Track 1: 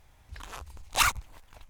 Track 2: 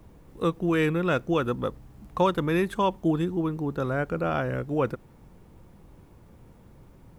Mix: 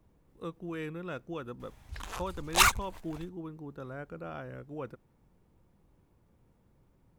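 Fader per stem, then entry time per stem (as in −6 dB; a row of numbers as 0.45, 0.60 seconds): +1.5, −14.5 decibels; 1.60, 0.00 seconds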